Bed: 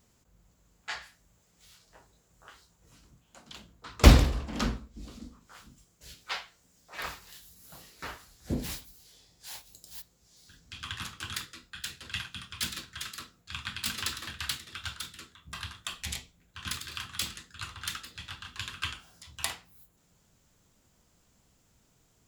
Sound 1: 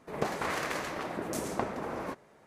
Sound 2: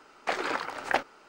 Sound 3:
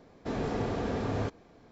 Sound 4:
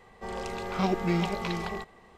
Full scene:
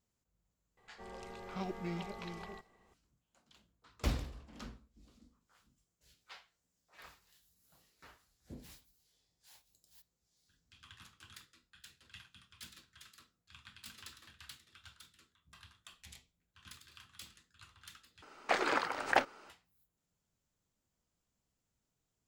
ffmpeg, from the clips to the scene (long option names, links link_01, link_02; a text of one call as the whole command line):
ffmpeg -i bed.wav -i cue0.wav -i cue1.wav -i cue2.wav -i cue3.wav -filter_complex "[0:a]volume=-18.5dB[link_01];[2:a]acontrast=78[link_02];[link_01]asplit=2[link_03][link_04];[link_03]atrim=end=18.224[link_05];[link_02]atrim=end=1.28,asetpts=PTS-STARTPTS,volume=-8.5dB[link_06];[link_04]atrim=start=19.496[link_07];[4:a]atrim=end=2.17,asetpts=PTS-STARTPTS,volume=-13.5dB,afade=type=in:duration=0.004:curve=hsin,afade=type=out:start_time=2.166:duration=0.004:curve=hsin,adelay=770[link_08];[link_05][link_06]acrossfade=duration=0.004:curve1=hsin:curve2=hsin[link_09];[link_09][link_07]acrossfade=duration=0.004:curve1=hsin:curve2=hsin[link_10];[link_10][link_08]amix=inputs=2:normalize=0" out.wav